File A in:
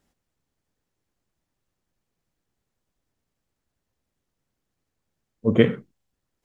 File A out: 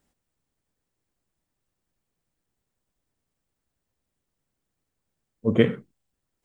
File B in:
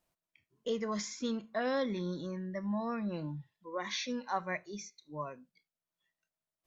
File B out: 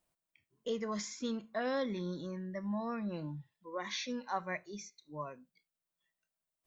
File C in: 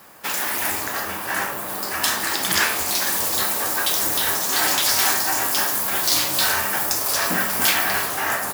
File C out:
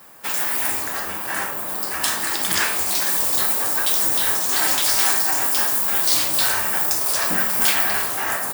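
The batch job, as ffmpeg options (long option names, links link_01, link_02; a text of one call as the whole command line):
ffmpeg -i in.wav -af "aexciter=amount=1.7:drive=1.8:freq=8000,volume=-2dB" out.wav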